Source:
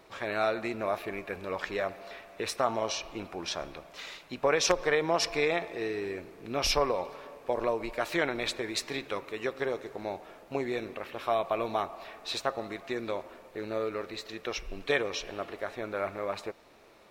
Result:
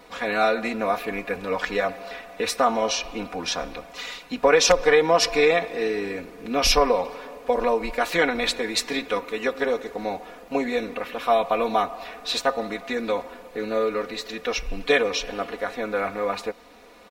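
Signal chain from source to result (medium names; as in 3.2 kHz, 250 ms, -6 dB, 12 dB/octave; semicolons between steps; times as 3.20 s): comb 4.1 ms, depth 97%; trim +5.5 dB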